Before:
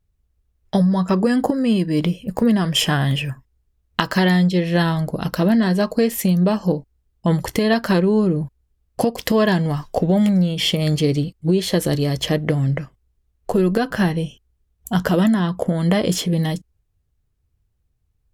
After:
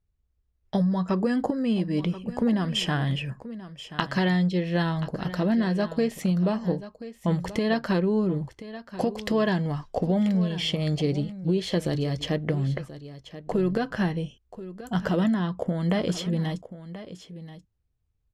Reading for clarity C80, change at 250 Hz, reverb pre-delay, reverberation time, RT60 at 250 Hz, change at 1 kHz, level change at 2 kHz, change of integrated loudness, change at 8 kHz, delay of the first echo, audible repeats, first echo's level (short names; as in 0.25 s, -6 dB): none, -7.0 dB, none, none, none, -7.0 dB, -7.5 dB, -7.0 dB, -13.0 dB, 1.032 s, 1, -14.5 dB